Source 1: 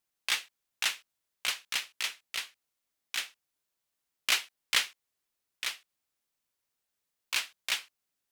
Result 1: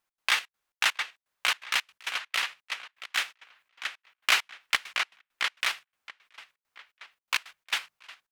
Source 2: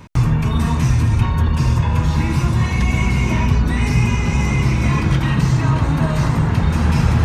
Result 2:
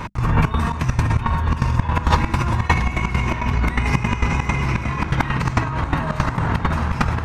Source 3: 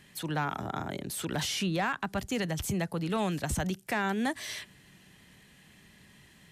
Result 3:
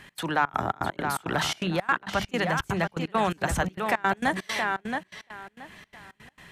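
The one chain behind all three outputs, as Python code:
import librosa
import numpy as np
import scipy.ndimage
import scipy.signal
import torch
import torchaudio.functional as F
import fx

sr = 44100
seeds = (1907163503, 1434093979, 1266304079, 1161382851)

p1 = fx.hum_notches(x, sr, base_hz=50, count=4)
p2 = fx.echo_tape(p1, sr, ms=675, feedback_pct=30, wet_db=-7.5, lp_hz=4900.0, drive_db=2.0, wow_cents=37)
p3 = fx.level_steps(p2, sr, step_db=20)
p4 = p2 + F.gain(torch.from_numpy(p3), 1.5).numpy()
p5 = fx.peak_eq(p4, sr, hz=1200.0, db=11.0, octaves=2.6)
p6 = fx.step_gate(p5, sr, bpm=167, pattern='x.xxx.xx.x.x', floor_db=-24.0, edge_ms=4.5)
p7 = fx.over_compress(p6, sr, threshold_db=-15.0, ratio=-0.5)
p8 = fx.low_shelf(p7, sr, hz=95.0, db=8.0)
y = F.gain(torch.from_numpy(p8), -3.5).numpy()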